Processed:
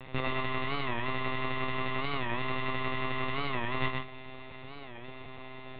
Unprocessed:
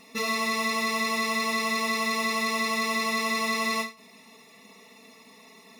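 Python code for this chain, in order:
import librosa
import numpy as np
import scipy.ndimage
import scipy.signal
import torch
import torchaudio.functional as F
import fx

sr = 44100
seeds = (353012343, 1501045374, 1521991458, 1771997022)

p1 = fx.halfwave_hold(x, sr)
p2 = fx.over_compress(p1, sr, threshold_db=-27.0, ratio=-0.5)
p3 = fx.lpc_monotone(p2, sr, seeds[0], pitch_hz=130.0, order=10)
p4 = p3 + fx.echo_single(p3, sr, ms=126, db=-4.0, dry=0)
p5 = fx.record_warp(p4, sr, rpm=45.0, depth_cents=160.0)
y = F.gain(torch.from_numpy(p5), -3.5).numpy()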